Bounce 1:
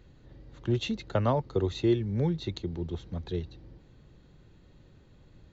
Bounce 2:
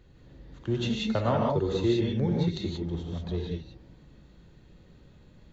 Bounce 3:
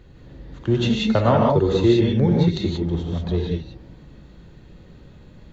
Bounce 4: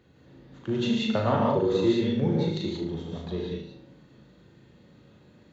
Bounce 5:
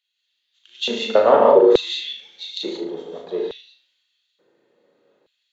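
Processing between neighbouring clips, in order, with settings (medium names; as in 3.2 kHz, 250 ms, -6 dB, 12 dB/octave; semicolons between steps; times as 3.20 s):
gated-style reverb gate 210 ms rising, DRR -2 dB; trim -1.5 dB
treble shelf 4.3 kHz -4.5 dB; trim +9 dB
high-pass 130 Hz 12 dB/octave; on a send: flutter echo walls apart 6.5 m, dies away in 0.46 s; on the sum: trim -7.5 dB
LFO high-pass square 0.57 Hz 460–3200 Hz; three bands expanded up and down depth 40%; trim +4.5 dB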